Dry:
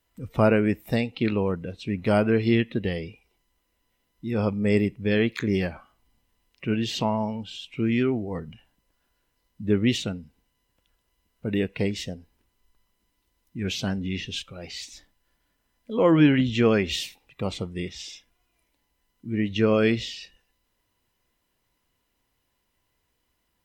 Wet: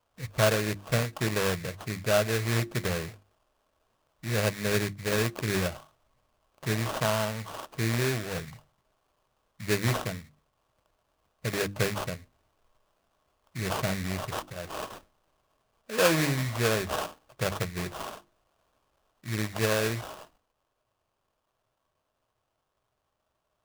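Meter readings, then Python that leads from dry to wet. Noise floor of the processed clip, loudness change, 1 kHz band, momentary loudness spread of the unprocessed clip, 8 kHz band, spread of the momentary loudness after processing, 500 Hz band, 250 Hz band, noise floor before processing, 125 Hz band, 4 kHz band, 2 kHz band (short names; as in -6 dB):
-79 dBFS, -4.5 dB, -0.5 dB, 16 LU, +7.0 dB, 15 LU, -4.0 dB, -10.0 dB, -75 dBFS, -2.0 dB, -1.5 dB, +1.0 dB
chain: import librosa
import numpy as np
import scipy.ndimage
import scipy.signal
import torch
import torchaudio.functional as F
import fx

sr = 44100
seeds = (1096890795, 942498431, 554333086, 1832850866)

y = fx.graphic_eq(x, sr, hz=(125, 250, 1000, 2000, 4000, 8000), db=(9, -9, -5, -7, -4, 3))
y = fx.sample_hold(y, sr, seeds[0], rate_hz=2100.0, jitter_pct=20)
y = fx.low_shelf(y, sr, hz=410.0, db=-10.0)
y = fx.hum_notches(y, sr, base_hz=50, count=7)
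y = fx.small_body(y, sr, hz=(620.0, 1100.0), ring_ms=45, db=7)
y = fx.rider(y, sr, range_db=3, speed_s=0.5)
y = y * librosa.db_to_amplitude(3.0)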